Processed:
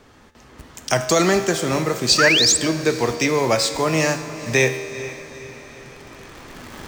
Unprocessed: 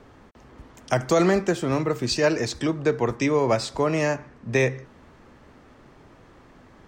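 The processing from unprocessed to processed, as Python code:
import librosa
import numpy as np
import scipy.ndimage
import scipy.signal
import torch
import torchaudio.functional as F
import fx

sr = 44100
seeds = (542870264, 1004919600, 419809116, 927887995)

p1 = fx.recorder_agc(x, sr, target_db=-18.5, rise_db_per_s=6.1, max_gain_db=30)
p2 = np.where(np.abs(p1) >= 10.0 ** (-32.5 / 20.0), p1, 0.0)
p3 = p1 + F.gain(torch.from_numpy(p2), -7.5).numpy()
p4 = fx.high_shelf(p3, sr, hz=2300.0, db=11.5)
p5 = fx.comb_fb(p4, sr, f0_hz=79.0, decay_s=1.5, harmonics='all', damping=0.0, mix_pct=70)
p6 = fx.echo_diffused(p5, sr, ms=456, feedback_pct=53, wet_db=-14.5)
p7 = fx.spec_paint(p6, sr, seeds[0], shape='rise', start_s=2.18, length_s=0.39, low_hz=1200.0, high_hz=8500.0, level_db=-24.0)
y = F.gain(torch.from_numpy(p7), 7.5).numpy()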